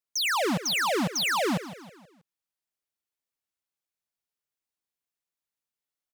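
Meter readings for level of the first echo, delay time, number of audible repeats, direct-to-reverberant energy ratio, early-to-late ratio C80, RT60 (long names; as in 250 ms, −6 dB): −14.5 dB, 160 ms, 4, no reverb audible, no reverb audible, no reverb audible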